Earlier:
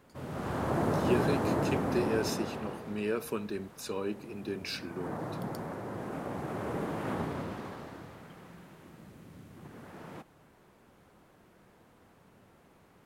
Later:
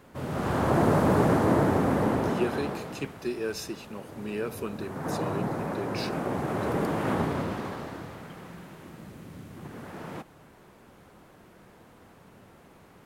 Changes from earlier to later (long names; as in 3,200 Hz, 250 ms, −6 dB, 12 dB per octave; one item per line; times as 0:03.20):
speech: entry +1.30 s
background +7.0 dB